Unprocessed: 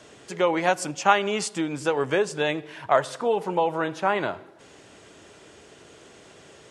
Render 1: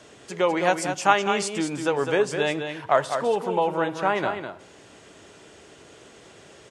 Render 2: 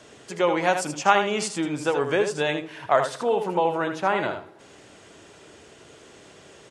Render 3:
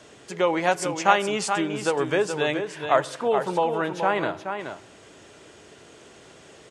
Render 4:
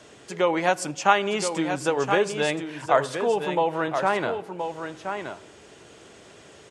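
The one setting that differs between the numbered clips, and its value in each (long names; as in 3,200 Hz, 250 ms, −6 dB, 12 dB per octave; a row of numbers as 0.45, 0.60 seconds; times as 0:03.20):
single-tap delay, delay time: 204, 79, 426, 1,023 milliseconds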